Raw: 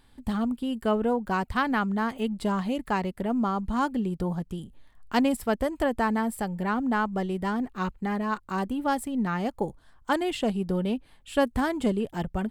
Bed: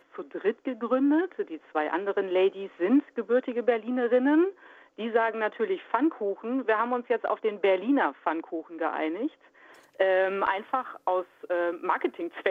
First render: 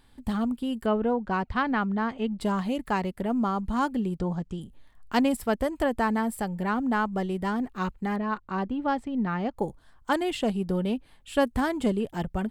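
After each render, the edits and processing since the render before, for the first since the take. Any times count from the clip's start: 0.86–2.41 air absorption 130 m; 4.19–4.61 Chebyshev low-pass 7300 Hz, order 3; 8.16–9.57 air absorption 170 m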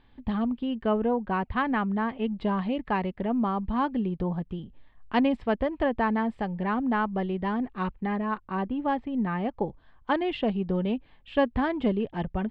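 LPF 3400 Hz 24 dB/oct; notch 1400 Hz, Q 11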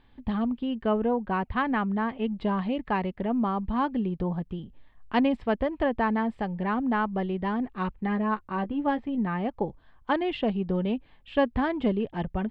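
7.97–9.18 doubler 14 ms -8 dB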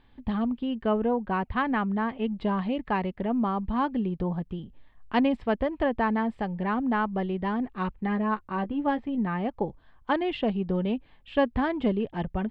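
nothing audible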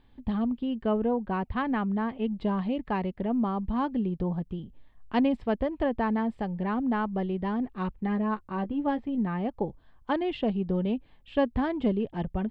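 bell 1700 Hz -5 dB 2.4 oct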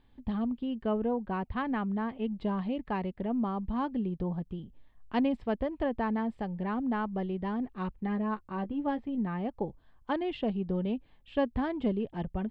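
gain -3.5 dB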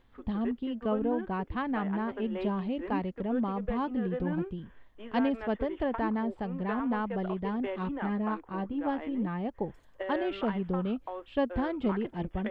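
add bed -13 dB

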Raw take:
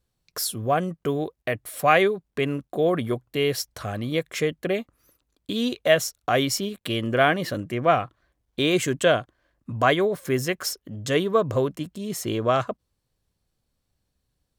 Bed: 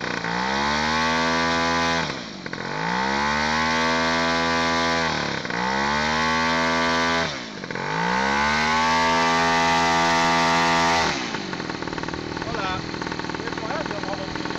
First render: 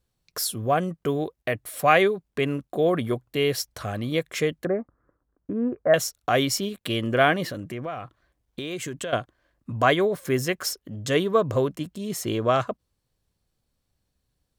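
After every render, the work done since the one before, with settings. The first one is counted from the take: 4.65–5.94 steep low-pass 1700 Hz 48 dB/oct; 7.44–9.13 compressor, threshold -29 dBFS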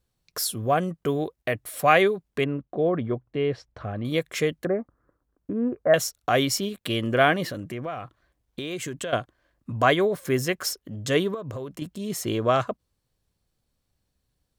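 2.44–4.05 tape spacing loss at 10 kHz 36 dB; 11.34–11.82 compressor 12:1, threshold -30 dBFS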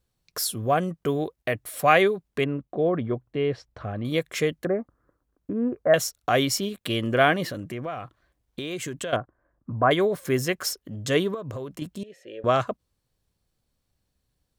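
9.16–9.91 LPF 1500 Hz 24 dB/oct; 12.03–12.44 vowel filter e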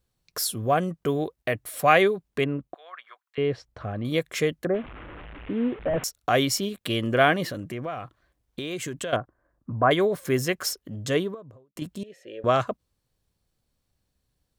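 2.74–3.38 HPF 1200 Hz 24 dB/oct; 4.74–6.04 delta modulation 16 kbps, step -35.5 dBFS; 10.95–11.76 studio fade out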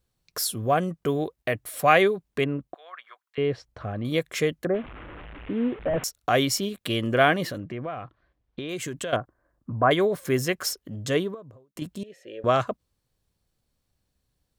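7.58–8.69 air absorption 190 m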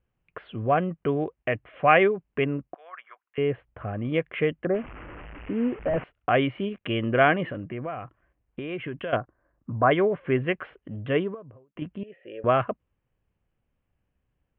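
steep low-pass 3000 Hz 72 dB/oct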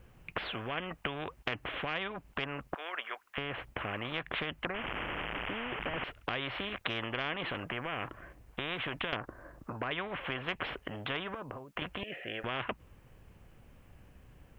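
compressor, threshold -26 dBFS, peak gain reduction 13 dB; spectral compressor 4:1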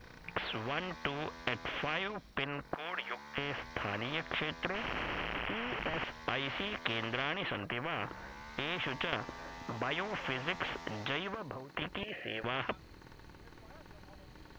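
add bed -29 dB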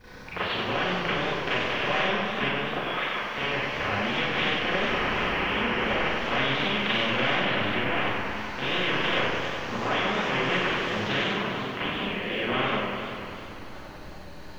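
Schroeder reverb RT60 0.59 s, combs from 30 ms, DRR -8.5 dB; warbling echo 98 ms, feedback 80%, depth 127 cents, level -6.5 dB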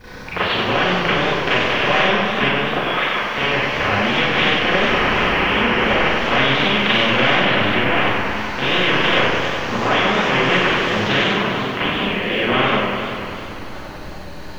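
gain +9.5 dB

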